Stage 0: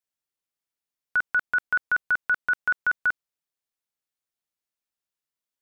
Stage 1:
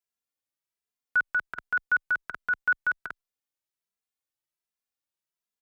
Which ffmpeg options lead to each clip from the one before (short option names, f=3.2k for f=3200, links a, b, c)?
-filter_complex "[0:a]asplit=2[a][b];[b]adelay=2.6,afreqshift=1.3[c];[a][c]amix=inputs=2:normalize=1"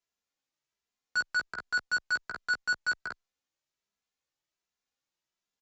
-filter_complex "[0:a]aresample=16000,asoftclip=type=tanh:threshold=-31.5dB,aresample=44100,asplit=2[a][b];[b]adelay=15,volume=-4dB[c];[a][c]amix=inputs=2:normalize=0,volume=3dB"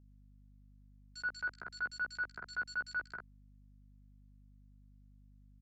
-filter_complex "[0:a]highshelf=f=4.4k:g=-6.5,acrossover=split=2900[a][b];[a]adelay=80[c];[c][b]amix=inputs=2:normalize=0,aeval=exprs='val(0)+0.00224*(sin(2*PI*50*n/s)+sin(2*PI*2*50*n/s)/2+sin(2*PI*3*50*n/s)/3+sin(2*PI*4*50*n/s)/4+sin(2*PI*5*50*n/s)/5)':c=same,volume=-6.5dB"